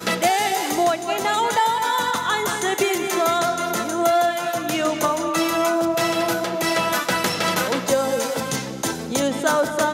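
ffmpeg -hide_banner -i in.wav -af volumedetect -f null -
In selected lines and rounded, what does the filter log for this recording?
mean_volume: -21.3 dB
max_volume: -6.2 dB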